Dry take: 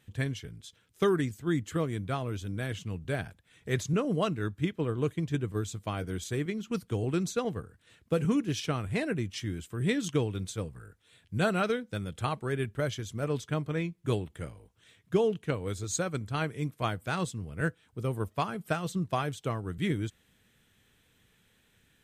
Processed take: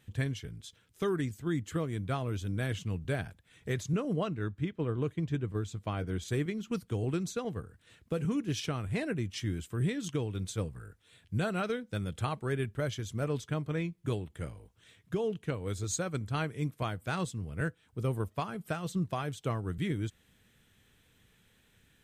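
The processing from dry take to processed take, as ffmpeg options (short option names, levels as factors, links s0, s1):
-filter_complex "[0:a]asettb=1/sr,asplit=3[s0][s1][s2];[s0]atrim=end=4.134[s3];[s1]atrim=start=4.13:end=6.28,asetpts=PTS-STARTPTS,afade=t=in:d=0.004:c=qsin,afade=t=out:st=2.146:d=0.004:c=qsin,highshelf=f=6200:g=-10.5[s4];[s2]atrim=start=6.276[s5];[s3][s4]acrossfade=d=0.004:c1=hsin:c2=qsin[s6];[s6][s5]acrossfade=d=0.004:c1=qsin:c2=hsin,lowshelf=f=130:g=3.5,alimiter=limit=0.075:level=0:latency=1:release=397"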